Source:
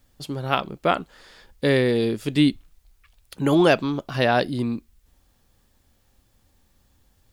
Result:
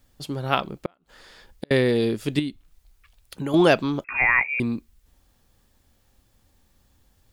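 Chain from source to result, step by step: 0.71–1.71 s: inverted gate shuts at -15 dBFS, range -40 dB; 2.39–3.54 s: compression 3:1, threshold -29 dBFS, peak gain reduction 12 dB; 4.04–4.60 s: frequency inversion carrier 2.6 kHz

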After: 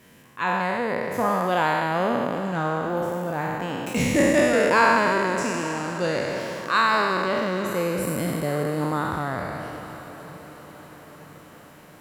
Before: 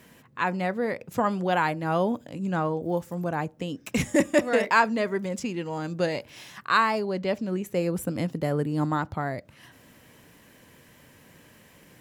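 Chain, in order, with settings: spectral sustain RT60 2.60 s; on a send: echo that smears into a reverb 883 ms, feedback 57%, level -15.5 dB; on the sum: trim -2 dB

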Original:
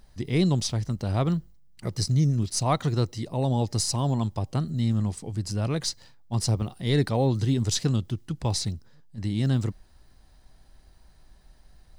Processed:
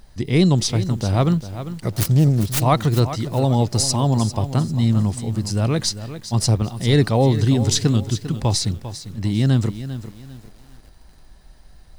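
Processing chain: 1.90–2.62 s: self-modulated delay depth 0.41 ms; bit-crushed delay 398 ms, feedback 35%, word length 8-bit, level -12 dB; trim +7 dB

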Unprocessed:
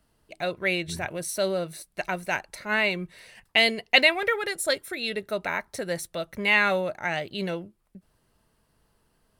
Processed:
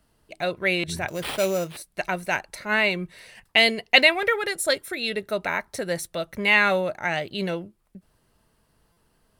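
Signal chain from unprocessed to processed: 1.08–1.77 s: sample-rate reducer 6.5 kHz, jitter 0%; buffer glitch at 0.79/8.92 s, samples 256, times 7; trim +2.5 dB

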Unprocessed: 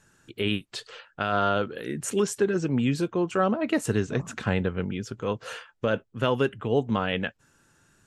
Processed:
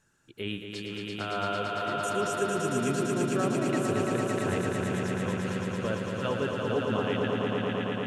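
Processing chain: echo with a slow build-up 113 ms, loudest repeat 5, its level -4.5 dB; trim -8 dB

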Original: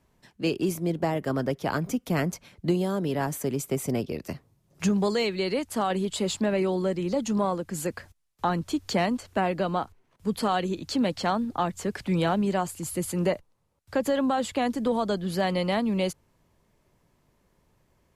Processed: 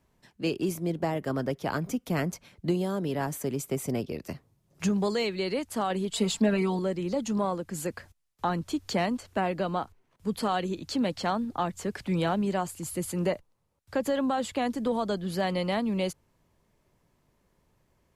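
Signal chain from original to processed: 6.11–6.79 s: comb 4.4 ms, depth 94%; trim -2.5 dB

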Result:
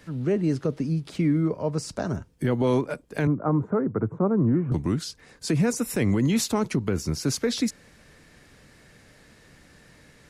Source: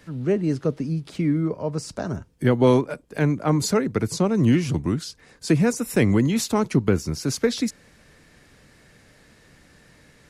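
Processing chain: 3.27–4.72 s: elliptic band-pass 100–1300 Hz, stop band 50 dB; peak limiter -14.5 dBFS, peak gain reduction 7.5 dB

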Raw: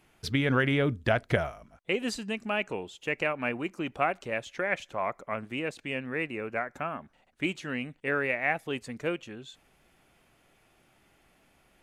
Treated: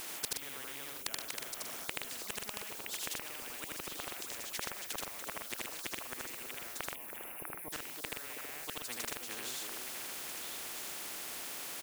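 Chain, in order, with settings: Chebyshev high-pass 320 Hz, order 3; treble shelf 3.9 kHz +5.5 dB; inverted gate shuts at -27 dBFS, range -32 dB; added noise white -80 dBFS; treble shelf 10 kHz +7 dB; loudspeakers at several distances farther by 27 m -1 dB, 42 m -8 dB; spectral selection erased 6.95–7.73 s, 1.1–9.4 kHz; repeats whose band climbs or falls 323 ms, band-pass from 390 Hz, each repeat 1.4 oct, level -7 dB; spectrum-flattening compressor 4:1; trim +6.5 dB

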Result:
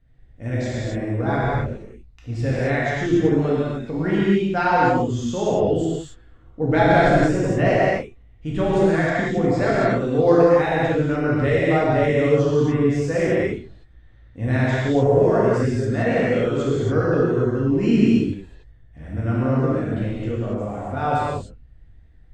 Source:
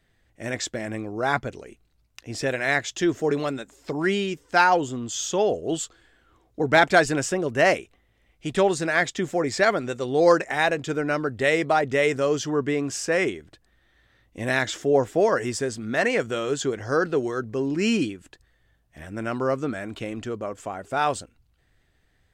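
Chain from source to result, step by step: RIAA curve playback; gated-style reverb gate 310 ms flat, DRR -8 dB; trim -7.5 dB

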